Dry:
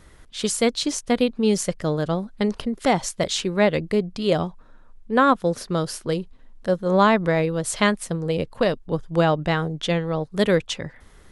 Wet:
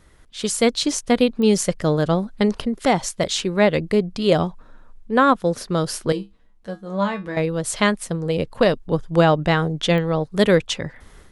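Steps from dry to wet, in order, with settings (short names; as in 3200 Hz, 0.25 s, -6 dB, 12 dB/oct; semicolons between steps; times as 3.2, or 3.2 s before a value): AGC; 6.12–7.37 resonator 66 Hz, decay 0.2 s, harmonics odd, mix 90%; pops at 1.42/9.98, -14 dBFS; gain -3.5 dB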